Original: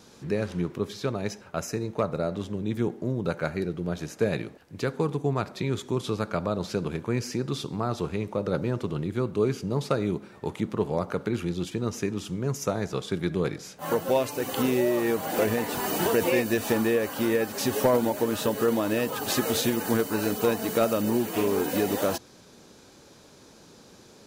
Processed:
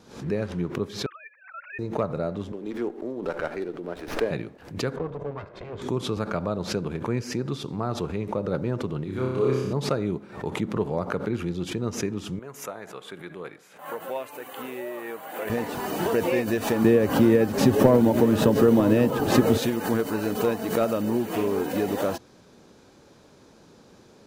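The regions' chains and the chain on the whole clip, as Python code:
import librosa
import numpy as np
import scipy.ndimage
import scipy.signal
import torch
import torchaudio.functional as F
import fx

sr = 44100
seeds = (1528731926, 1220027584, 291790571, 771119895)

y = fx.chain(x, sr, fx.sine_speech(),
    fx.highpass(hz=1300.0, slope=24),
    fx.air_absorb(metres=190.0), at=(1.06, 1.79))
y = fx.chain(y, sr, fx.highpass(hz=270.0, slope=24),
    fx.running_max(window=5), at=(2.52, 4.31))
y = fx.chain(y, sr, fx.lower_of_two(delay_ms=1.9),
    fx.highpass(hz=84.0, slope=6),
    fx.spacing_loss(db_at_10k=24), at=(4.96, 5.82))
y = fx.chain(y, sr, fx.low_shelf(hz=450.0, db=-6.5),
    fx.room_flutter(wall_m=5.3, rt60_s=1.1), at=(9.04, 9.73))
y = fx.chain(y, sr, fx.highpass(hz=1300.0, slope=6),
    fx.peak_eq(hz=5300.0, db=-13.0, octaves=0.97), at=(12.39, 15.5))
y = fx.chain(y, sr, fx.low_shelf(hz=390.0, db=11.5),
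    fx.echo_single(ms=945, db=-13.0),
    fx.band_squash(depth_pct=40), at=(16.84, 19.58))
y = fx.high_shelf(y, sr, hz=3100.0, db=-8.5)
y = fx.pre_swell(y, sr, db_per_s=110.0)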